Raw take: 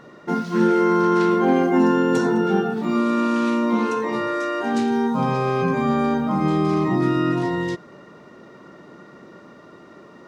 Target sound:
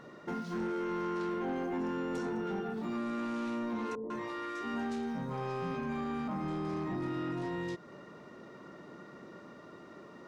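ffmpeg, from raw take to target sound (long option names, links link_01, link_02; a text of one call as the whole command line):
ffmpeg -i in.wav -filter_complex "[0:a]acompressor=threshold=-30dB:ratio=2,asoftclip=type=tanh:threshold=-24dB,asettb=1/sr,asplit=3[link_01][link_02][link_03];[link_01]atrim=end=3.954[link_04];[link_02]atrim=start=3.95:end=6.28,asetpts=PTS-STARTPTS,afade=type=in:duration=0.004:curve=qsin,afade=type=out:start_time=2.326:duration=0.004:curve=qsin,acrossover=split=640[link_05][link_06];[link_06]adelay=150[link_07];[link_05][link_07]amix=inputs=2:normalize=0,atrim=end_sample=102753[link_08];[link_03]atrim=start=6.276[link_09];[link_04][link_08]acrossfade=duration=0.004:curve1=hsin:curve2=qsin[link_10];[link_10][link_09]acrossfade=duration=0.004:curve1=qsin:curve2=hsin,volume=-6dB" out.wav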